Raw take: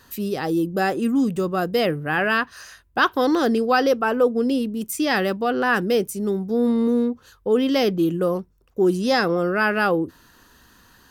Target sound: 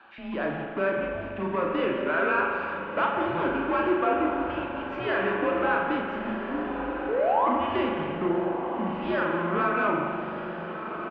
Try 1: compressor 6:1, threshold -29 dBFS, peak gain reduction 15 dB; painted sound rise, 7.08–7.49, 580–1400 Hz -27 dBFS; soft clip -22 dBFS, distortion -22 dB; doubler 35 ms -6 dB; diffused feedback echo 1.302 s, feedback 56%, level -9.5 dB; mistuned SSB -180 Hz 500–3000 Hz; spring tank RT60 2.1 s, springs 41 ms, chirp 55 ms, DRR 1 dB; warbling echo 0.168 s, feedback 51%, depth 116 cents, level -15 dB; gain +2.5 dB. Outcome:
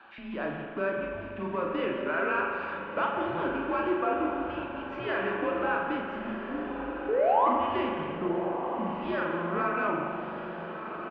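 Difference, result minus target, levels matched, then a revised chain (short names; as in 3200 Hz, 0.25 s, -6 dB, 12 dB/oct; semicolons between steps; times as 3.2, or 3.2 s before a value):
compressor: peak gain reduction +5.5 dB
compressor 6:1, threshold -22.5 dBFS, peak gain reduction 9.5 dB; painted sound rise, 7.08–7.49, 580–1400 Hz -27 dBFS; soft clip -22 dBFS, distortion -16 dB; doubler 35 ms -6 dB; diffused feedback echo 1.302 s, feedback 56%, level -9.5 dB; mistuned SSB -180 Hz 500–3000 Hz; spring tank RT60 2.1 s, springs 41 ms, chirp 55 ms, DRR 1 dB; warbling echo 0.168 s, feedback 51%, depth 116 cents, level -15 dB; gain +2.5 dB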